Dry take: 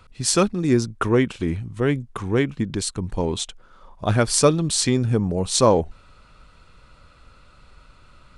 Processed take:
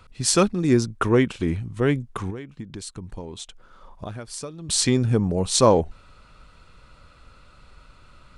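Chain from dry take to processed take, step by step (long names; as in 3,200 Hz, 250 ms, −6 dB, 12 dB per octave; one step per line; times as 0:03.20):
0:02.30–0:04.69: downward compressor 10 to 1, threshold −32 dBFS, peak gain reduction 22 dB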